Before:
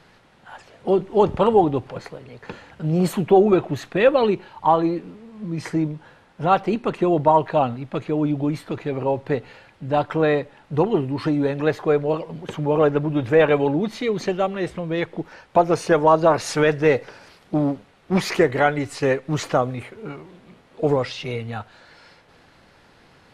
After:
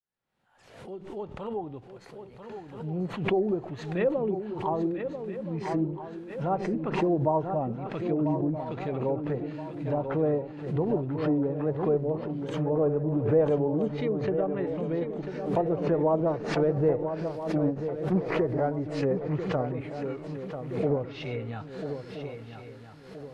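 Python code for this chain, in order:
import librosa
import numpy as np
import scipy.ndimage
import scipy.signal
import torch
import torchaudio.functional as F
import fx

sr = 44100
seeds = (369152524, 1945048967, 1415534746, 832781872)

p1 = fx.fade_in_head(x, sr, length_s=6.16)
p2 = librosa.effects.preemphasis(p1, coef=0.8, zi=[0.0])
p3 = fx.hpss(p2, sr, part='percussive', gain_db=-5)
p4 = fx.high_shelf(p3, sr, hz=2800.0, db=-12.0)
p5 = fx.env_lowpass_down(p4, sr, base_hz=680.0, full_db=-33.0)
p6 = p5 + fx.echo_swing(p5, sr, ms=1323, ratio=3, feedback_pct=39, wet_db=-8.5, dry=0)
p7 = fx.pre_swell(p6, sr, db_per_s=74.0)
y = p7 * 10.0 ** (8.5 / 20.0)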